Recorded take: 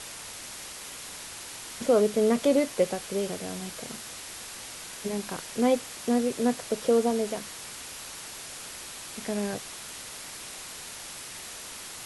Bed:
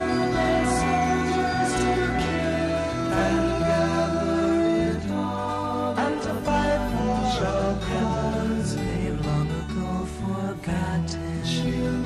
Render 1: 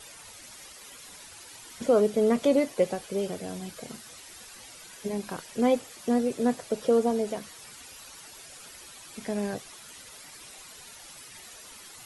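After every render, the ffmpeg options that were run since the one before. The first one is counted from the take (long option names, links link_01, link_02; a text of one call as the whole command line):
ffmpeg -i in.wav -af "afftdn=noise_reduction=11:noise_floor=-42" out.wav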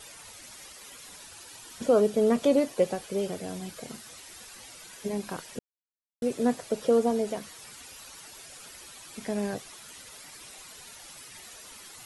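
ffmpeg -i in.wav -filter_complex "[0:a]asettb=1/sr,asplit=3[link_01][link_02][link_03];[link_01]atrim=end=1.154[link_04];[link_02]atrim=start=1.15:end=2.91,asetpts=PTS-STARTPTS,afade=type=in:duration=0.004:curve=qsin,afade=type=out:start_time=1.756:duration=0.004:curve=qsin,bandreject=frequency=2100:width=12[link_05];[link_03]atrim=start=2.906[link_06];[link_04][link_05]acrossfade=duration=0.004:curve1=hsin:curve2=qsin[link_07];[link_07][link_06]acrossfade=duration=0.004:curve1=qsin:curve2=hsin,asplit=3[link_08][link_09][link_10];[link_08]atrim=end=5.59,asetpts=PTS-STARTPTS,afade=type=out:start_time=5.586:duration=0.004:curve=hsin[link_11];[link_09]atrim=start=5.59:end=6.22,asetpts=PTS-STARTPTS,volume=0[link_12];[link_10]atrim=start=6.22,asetpts=PTS-STARTPTS,afade=type=in:duration=0.004:curve=hsin[link_13];[link_11][link_12][link_13]concat=n=3:v=0:a=1" out.wav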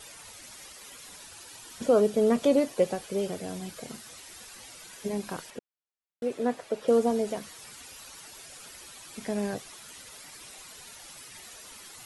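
ffmpeg -i in.wav -filter_complex "[0:a]asettb=1/sr,asplit=3[link_01][link_02][link_03];[link_01]atrim=end=5.504[link_04];[link_02]atrim=start=5.5:end=6.88,asetpts=PTS-STARTPTS,afade=type=in:duration=0.004:curve=qsin,afade=type=out:start_time=1.376:duration=0.004:curve=qsin,bass=frequency=250:gain=-9,treble=frequency=4000:gain=-9[link_05];[link_03]atrim=start=6.876[link_06];[link_04][link_05]acrossfade=duration=0.004:curve1=hsin:curve2=qsin[link_07];[link_07][link_06]acrossfade=duration=0.004:curve1=qsin:curve2=hsin" out.wav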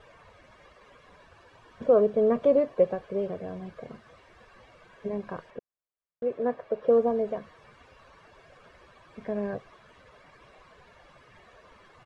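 ffmpeg -i in.wav -af "lowpass=1500,aecho=1:1:1.8:0.4" out.wav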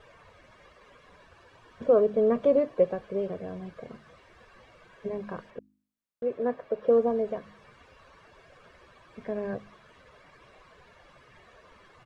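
ffmpeg -i in.wav -af "equalizer=frequency=770:width_type=o:width=0.77:gain=-2,bandreject=frequency=51.4:width_type=h:width=4,bandreject=frequency=102.8:width_type=h:width=4,bandreject=frequency=154.2:width_type=h:width=4,bandreject=frequency=205.6:width_type=h:width=4,bandreject=frequency=257:width_type=h:width=4,bandreject=frequency=308.4:width_type=h:width=4" out.wav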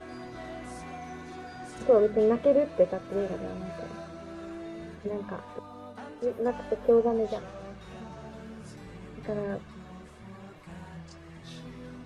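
ffmpeg -i in.wav -i bed.wav -filter_complex "[1:a]volume=-19dB[link_01];[0:a][link_01]amix=inputs=2:normalize=0" out.wav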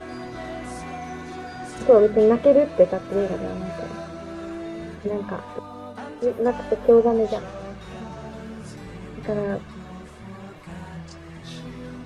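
ffmpeg -i in.wav -af "volume=7dB" out.wav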